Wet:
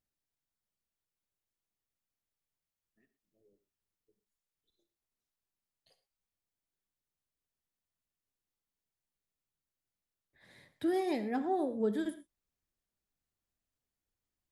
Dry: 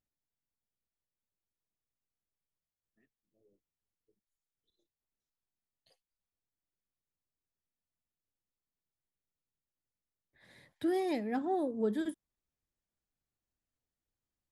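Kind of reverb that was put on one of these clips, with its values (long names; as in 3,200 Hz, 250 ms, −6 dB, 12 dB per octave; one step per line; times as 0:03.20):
reverb whose tail is shaped and stops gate 140 ms flat, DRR 11 dB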